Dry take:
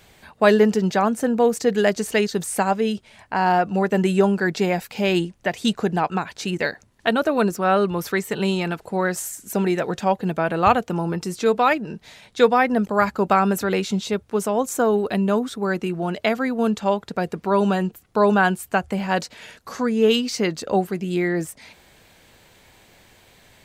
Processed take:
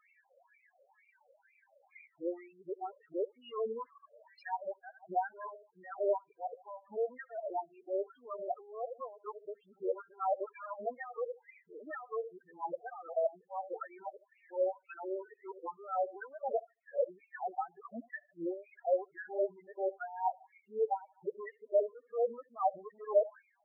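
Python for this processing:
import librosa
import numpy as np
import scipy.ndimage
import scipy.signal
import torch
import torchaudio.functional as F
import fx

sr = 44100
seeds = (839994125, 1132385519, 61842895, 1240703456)

y = np.flip(x).copy()
y = np.clip(10.0 ** (17.5 / 20.0) * y, -1.0, 1.0) / 10.0 ** (17.5 / 20.0)
y = fx.env_lowpass_down(y, sr, base_hz=1100.0, full_db=-21.5)
y = fx.peak_eq(y, sr, hz=200.0, db=-10.0, octaves=0.25)
y = fx.echo_feedback(y, sr, ms=75, feedback_pct=35, wet_db=-15.0)
y = fx.wah_lfo(y, sr, hz=2.1, low_hz=540.0, high_hz=2500.0, q=3.8)
y = fx.transient(y, sr, attack_db=0, sustain_db=-5)
y = fx.spec_topn(y, sr, count=4)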